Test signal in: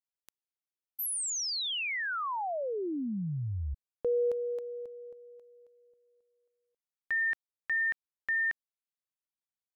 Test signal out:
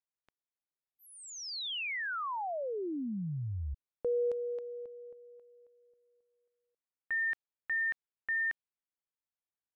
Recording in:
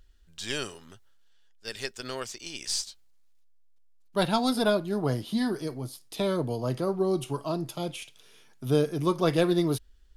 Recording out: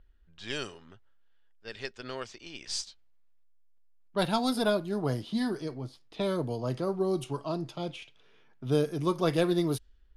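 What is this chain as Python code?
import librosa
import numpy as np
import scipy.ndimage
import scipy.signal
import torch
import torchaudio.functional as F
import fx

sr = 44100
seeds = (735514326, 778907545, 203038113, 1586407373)

y = fx.env_lowpass(x, sr, base_hz=2100.0, full_db=-22.0)
y = F.gain(torch.from_numpy(y), -2.5).numpy()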